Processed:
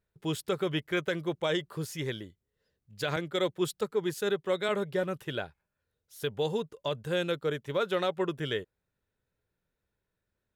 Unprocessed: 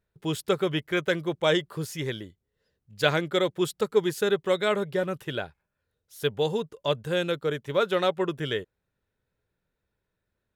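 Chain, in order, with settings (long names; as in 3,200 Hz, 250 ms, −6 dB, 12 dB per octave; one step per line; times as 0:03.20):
brickwall limiter −16.5 dBFS, peak gain reduction 9.5 dB
0:03.16–0:04.69: multiband upward and downward expander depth 70%
level −3 dB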